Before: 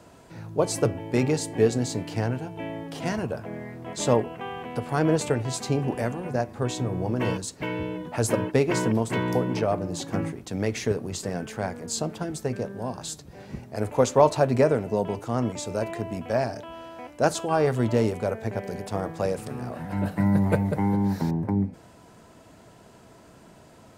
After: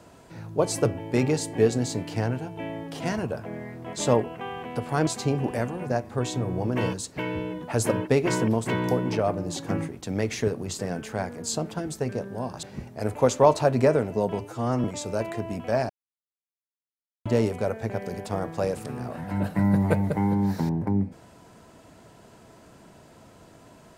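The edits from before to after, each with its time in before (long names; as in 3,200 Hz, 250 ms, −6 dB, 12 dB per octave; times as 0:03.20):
0:05.07–0:05.51: remove
0:13.07–0:13.39: remove
0:15.17–0:15.46: time-stretch 1.5×
0:16.51–0:17.87: silence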